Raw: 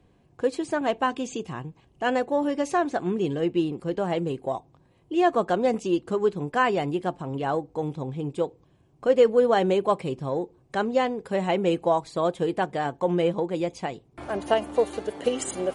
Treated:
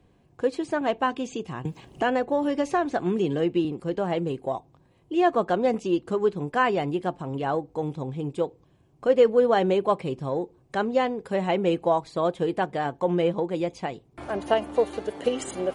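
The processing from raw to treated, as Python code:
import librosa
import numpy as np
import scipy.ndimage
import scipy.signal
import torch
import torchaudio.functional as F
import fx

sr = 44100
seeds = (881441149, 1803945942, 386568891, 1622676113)

y = fx.dynamic_eq(x, sr, hz=8600.0, q=0.91, threshold_db=-52.0, ratio=4.0, max_db=-6)
y = fx.band_squash(y, sr, depth_pct=70, at=(1.65, 3.65))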